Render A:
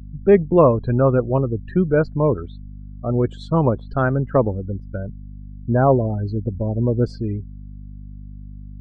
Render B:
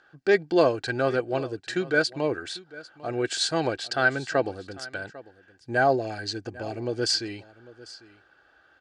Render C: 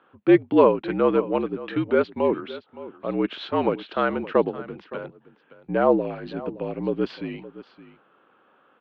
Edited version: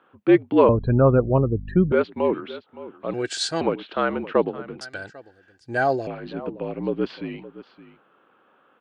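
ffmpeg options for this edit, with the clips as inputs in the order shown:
-filter_complex "[1:a]asplit=2[s0][s1];[2:a]asplit=4[s2][s3][s4][s5];[s2]atrim=end=0.692[s6];[0:a]atrim=start=0.688:end=1.922[s7];[s3]atrim=start=1.918:end=3.142[s8];[s0]atrim=start=3.138:end=3.612[s9];[s4]atrim=start=3.608:end=4.812[s10];[s1]atrim=start=4.808:end=6.072[s11];[s5]atrim=start=6.068[s12];[s6][s7]acrossfade=d=0.004:c1=hsin:c2=hsin[s13];[s13][s8]acrossfade=d=0.004:c1=hsin:c2=hsin[s14];[s14][s9]acrossfade=d=0.004:c1=hsin:c2=hsin[s15];[s15][s10]acrossfade=d=0.004:c1=hsin:c2=hsin[s16];[s16][s11]acrossfade=d=0.004:c1=hsin:c2=hsin[s17];[s17][s12]acrossfade=d=0.004:c1=hsin:c2=hsin"

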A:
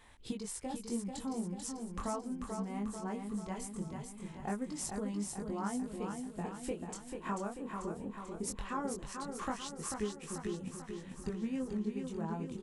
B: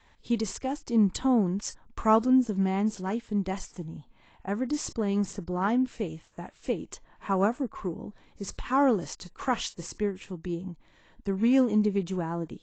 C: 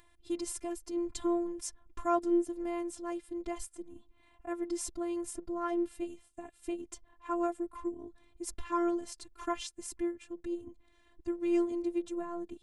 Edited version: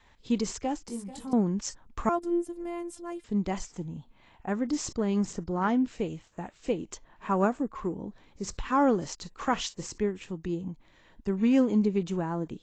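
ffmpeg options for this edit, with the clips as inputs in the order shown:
-filter_complex "[1:a]asplit=3[s0][s1][s2];[s0]atrim=end=0.882[s3];[0:a]atrim=start=0.878:end=1.332[s4];[s1]atrim=start=1.328:end=2.092[s5];[2:a]atrim=start=2.088:end=3.242[s6];[s2]atrim=start=3.238[s7];[s3][s4]acrossfade=d=0.004:c1=hsin:c2=hsin[s8];[s8][s5]acrossfade=d=0.004:c1=hsin:c2=hsin[s9];[s9][s6]acrossfade=d=0.004:c1=hsin:c2=hsin[s10];[s10][s7]acrossfade=d=0.004:c1=hsin:c2=hsin"

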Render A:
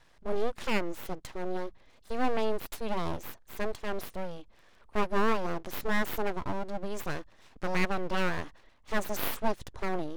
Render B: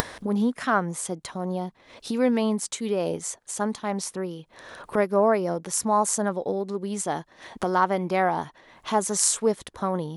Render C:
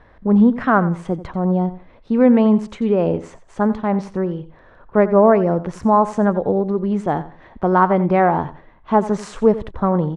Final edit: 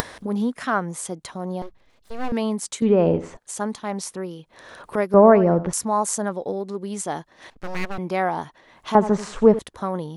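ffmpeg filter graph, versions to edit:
-filter_complex "[0:a]asplit=2[s0][s1];[2:a]asplit=3[s2][s3][s4];[1:a]asplit=6[s5][s6][s7][s8][s9][s10];[s5]atrim=end=1.622[s11];[s0]atrim=start=1.618:end=2.322[s12];[s6]atrim=start=2.318:end=2.822[s13];[s2]atrim=start=2.818:end=3.372[s14];[s7]atrim=start=3.368:end=5.142[s15];[s3]atrim=start=5.138:end=5.732[s16];[s8]atrim=start=5.728:end=7.502[s17];[s1]atrim=start=7.498:end=7.982[s18];[s9]atrim=start=7.978:end=8.952[s19];[s4]atrim=start=8.948:end=9.592[s20];[s10]atrim=start=9.588[s21];[s11][s12]acrossfade=d=0.004:c1=hsin:c2=hsin[s22];[s22][s13]acrossfade=d=0.004:c1=hsin:c2=hsin[s23];[s23][s14]acrossfade=d=0.004:c1=hsin:c2=hsin[s24];[s24][s15]acrossfade=d=0.004:c1=hsin:c2=hsin[s25];[s25][s16]acrossfade=d=0.004:c1=hsin:c2=hsin[s26];[s26][s17]acrossfade=d=0.004:c1=hsin:c2=hsin[s27];[s27][s18]acrossfade=d=0.004:c1=hsin:c2=hsin[s28];[s28][s19]acrossfade=d=0.004:c1=hsin:c2=hsin[s29];[s29][s20]acrossfade=d=0.004:c1=hsin:c2=hsin[s30];[s30][s21]acrossfade=d=0.004:c1=hsin:c2=hsin"

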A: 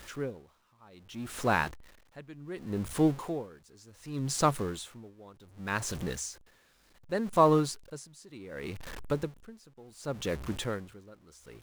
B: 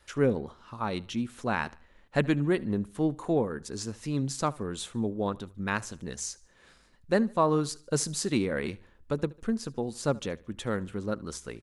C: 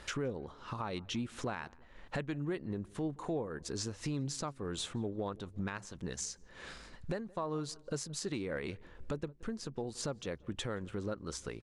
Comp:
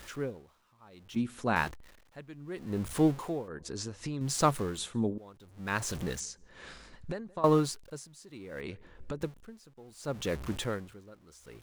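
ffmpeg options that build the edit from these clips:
-filter_complex "[1:a]asplit=2[s0][s1];[2:a]asplit=3[s2][s3][s4];[0:a]asplit=6[s5][s6][s7][s8][s9][s10];[s5]atrim=end=1.162[s11];[s0]atrim=start=1.158:end=1.562[s12];[s6]atrim=start=1.558:end=3.482[s13];[s2]atrim=start=3.478:end=4.212[s14];[s7]atrim=start=4.208:end=4.782[s15];[s1]atrim=start=4.778:end=5.182[s16];[s8]atrim=start=5.178:end=6.202[s17];[s3]atrim=start=6.198:end=7.442[s18];[s9]atrim=start=7.438:end=8.612[s19];[s4]atrim=start=8.608:end=9.212[s20];[s10]atrim=start=9.208[s21];[s11][s12]acrossfade=d=0.004:c1=hsin:c2=hsin[s22];[s22][s13]acrossfade=d=0.004:c1=hsin:c2=hsin[s23];[s23][s14]acrossfade=d=0.004:c1=hsin:c2=hsin[s24];[s24][s15]acrossfade=d=0.004:c1=hsin:c2=hsin[s25];[s25][s16]acrossfade=d=0.004:c1=hsin:c2=hsin[s26];[s26][s17]acrossfade=d=0.004:c1=hsin:c2=hsin[s27];[s27][s18]acrossfade=d=0.004:c1=hsin:c2=hsin[s28];[s28][s19]acrossfade=d=0.004:c1=hsin:c2=hsin[s29];[s29][s20]acrossfade=d=0.004:c1=hsin:c2=hsin[s30];[s30][s21]acrossfade=d=0.004:c1=hsin:c2=hsin"

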